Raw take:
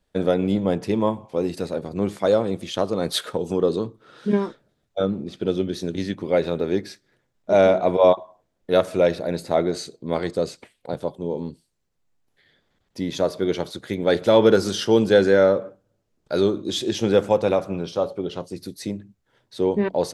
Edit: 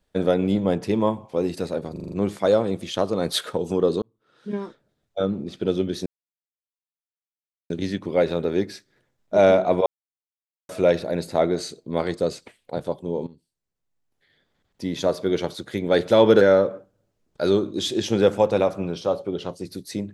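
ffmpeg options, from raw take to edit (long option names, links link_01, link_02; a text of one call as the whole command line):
ffmpeg -i in.wav -filter_complex "[0:a]asplit=12[link_01][link_02][link_03][link_04][link_05][link_06][link_07][link_08][link_09][link_10][link_11][link_12];[link_01]atrim=end=1.962[link_13];[link_02]atrim=start=1.918:end=1.962[link_14];[link_03]atrim=start=1.918:end=1.962[link_15];[link_04]atrim=start=1.918:end=1.962[link_16];[link_05]atrim=start=1.918:end=1.962[link_17];[link_06]atrim=start=1.918:end=3.82,asetpts=PTS-STARTPTS,afade=type=out:start_time=1.898:duration=0.004:curve=hsin[link_18];[link_07]atrim=start=3.82:end=5.86,asetpts=PTS-STARTPTS,afade=type=in:duration=1.4,afade=type=out:start_time=2.036:duration=0.004:curve=hsin,apad=pad_dur=1.64[link_19];[link_08]atrim=start=5.86:end=8.02,asetpts=PTS-STARTPTS,afade=type=in:duration=0.004:curve=hsin,afade=type=out:start_time=2.156:duration=0.004:curve=hsin[link_20];[link_09]atrim=start=8.02:end=8.85,asetpts=PTS-STARTPTS,volume=0[link_21];[link_10]atrim=start=8.85:end=11.43,asetpts=PTS-STARTPTS,afade=type=in:duration=0.004:curve=hsin,afade=type=out:start_time=2.576:duration=0.004:curve=hsin:silence=0.149624[link_22];[link_11]atrim=start=11.43:end=14.572,asetpts=PTS-STARTPTS,afade=type=in:duration=1.79:silence=0.149624[link_23];[link_12]atrim=start=15.318[link_24];[link_13][link_14]acrossfade=duration=0.004:curve1=hsin:curve2=hsin[link_25];[link_25][link_15]acrossfade=duration=0.004:curve1=hsin:curve2=hsin[link_26];[link_26][link_16]acrossfade=duration=0.004:curve1=hsin:curve2=hsin[link_27];[link_27][link_17]acrossfade=duration=0.004:curve1=hsin:curve2=hsin[link_28];[link_18][link_19][link_20][link_21][link_22][link_23]concat=n=6:v=0:a=1[link_29];[link_28][link_29]acrossfade=duration=0.004:curve1=hsin:curve2=hsin[link_30];[link_30][link_24]acrossfade=duration=0.004:curve1=hsin:curve2=hsin" out.wav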